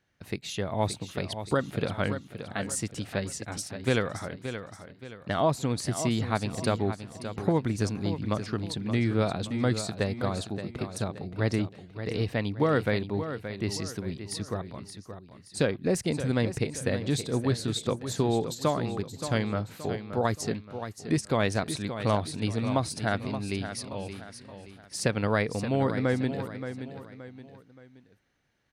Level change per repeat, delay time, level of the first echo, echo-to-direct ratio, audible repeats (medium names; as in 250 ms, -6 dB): -8.0 dB, 574 ms, -10.0 dB, -9.5 dB, 3